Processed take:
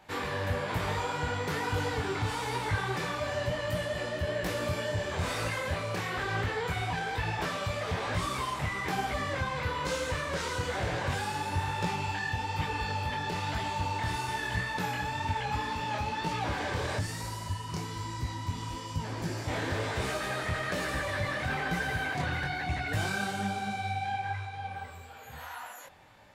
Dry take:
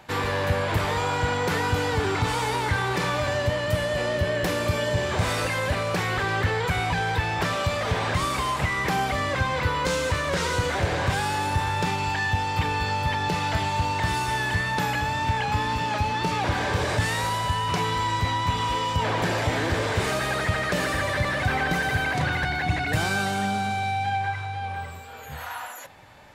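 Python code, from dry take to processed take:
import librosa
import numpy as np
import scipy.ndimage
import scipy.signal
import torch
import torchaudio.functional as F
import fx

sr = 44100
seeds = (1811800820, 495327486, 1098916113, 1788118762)

y = fx.spec_box(x, sr, start_s=16.98, length_s=2.49, low_hz=400.0, high_hz=4200.0, gain_db=-8)
y = fx.detune_double(y, sr, cents=38)
y = y * librosa.db_to_amplitude(-3.5)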